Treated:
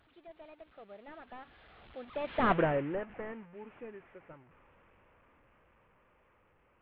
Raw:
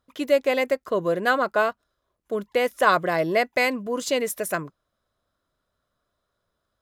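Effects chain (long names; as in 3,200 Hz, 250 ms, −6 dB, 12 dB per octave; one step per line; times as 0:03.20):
linear delta modulator 16 kbit/s, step −30 dBFS
source passing by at 0:02.56, 53 m/s, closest 4.4 metres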